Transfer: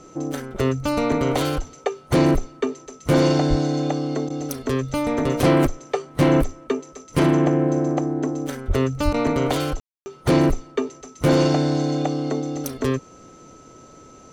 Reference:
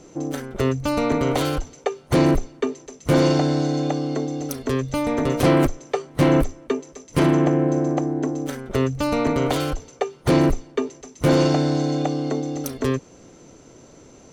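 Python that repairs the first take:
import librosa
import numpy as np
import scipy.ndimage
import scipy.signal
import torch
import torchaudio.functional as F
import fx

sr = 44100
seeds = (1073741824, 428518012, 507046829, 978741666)

y = fx.notch(x, sr, hz=1300.0, q=30.0)
y = fx.highpass(y, sr, hz=140.0, slope=24, at=(3.49, 3.61), fade=0.02)
y = fx.highpass(y, sr, hz=140.0, slope=24, at=(8.67, 8.79), fade=0.02)
y = fx.highpass(y, sr, hz=140.0, slope=24, at=(9.04, 9.16), fade=0.02)
y = fx.fix_ambience(y, sr, seeds[0], print_start_s=13.56, print_end_s=14.06, start_s=9.8, end_s=10.06)
y = fx.fix_interpolate(y, sr, at_s=(4.29, 9.13), length_ms=10.0)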